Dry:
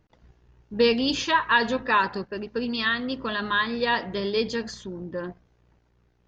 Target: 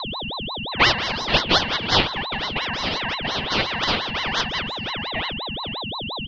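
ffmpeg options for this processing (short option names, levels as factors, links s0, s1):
-af "aeval=exprs='0.355*(cos(1*acos(clip(val(0)/0.355,-1,1)))-cos(1*PI/2))+0.0891*(cos(6*acos(clip(val(0)/0.355,-1,1)))-cos(6*PI/2))+0.126*(cos(7*acos(clip(val(0)/0.355,-1,1)))-cos(7*PI/2))':c=same,aeval=exprs='val(0)+0.0398*sin(2*PI*1400*n/s)':c=same,highpass=f=270:t=q:w=0.5412,highpass=f=270:t=q:w=1.307,lowpass=f=3000:t=q:w=0.5176,lowpass=f=3000:t=q:w=0.7071,lowpass=f=3000:t=q:w=1.932,afreqshift=73,aecho=1:1:489:0.158,aeval=exprs='val(0)*sin(2*PI*1900*n/s+1900*0.35/5.7*sin(2*PI*5.7*n/s))':c=same,volume=1.68"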